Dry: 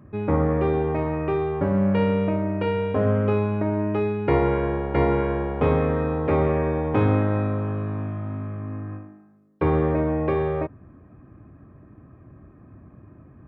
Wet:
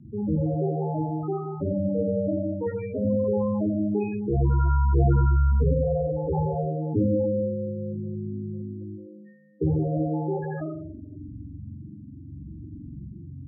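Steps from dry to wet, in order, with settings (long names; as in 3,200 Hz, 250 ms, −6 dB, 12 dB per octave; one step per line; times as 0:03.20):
in parallel at +0.5 dB: downward compressor, threshold −36 dBFS, peak gain reduction 19 dB
on the sum: spring reverb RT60 1.3 s, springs 44 ms, chirp 65 ms, DRR −3 dB
spectral peaks only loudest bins 8
rotating-speaker cabinet horn 0.75 Hz
level −1.5 dB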